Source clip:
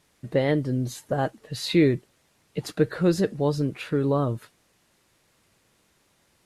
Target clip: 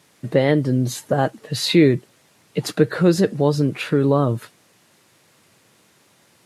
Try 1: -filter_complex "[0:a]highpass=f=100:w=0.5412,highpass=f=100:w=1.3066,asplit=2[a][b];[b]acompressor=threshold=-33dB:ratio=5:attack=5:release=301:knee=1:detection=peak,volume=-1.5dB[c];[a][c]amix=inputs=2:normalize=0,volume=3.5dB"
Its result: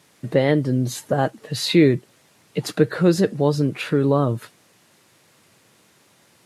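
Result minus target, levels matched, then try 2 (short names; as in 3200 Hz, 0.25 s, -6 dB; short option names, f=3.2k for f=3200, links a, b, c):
compressor: peak gain reduction +5.5 dB
-filter_complex "[0:a]highpass=f=100:w=0.5412,highpass=f=100:w=1.3066,asplit=2[a][b];[b]acompressor=threshold=-26dB:ratio=5:attack=5:release=301:knee=1:detection=peak,volume=-1.5dB[c];[a][c]amix=inputs=2:normalize=0,volume=3.5dB"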